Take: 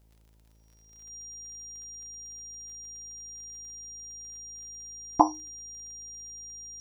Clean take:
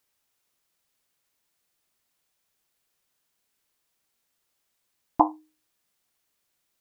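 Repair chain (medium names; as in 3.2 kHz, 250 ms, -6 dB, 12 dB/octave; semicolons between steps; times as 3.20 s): de-click; de-hum 54.6 Hz, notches 11; band-stop 5.7 kHz, Q 30; noise reduction 17 dB, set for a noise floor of -60 dBFS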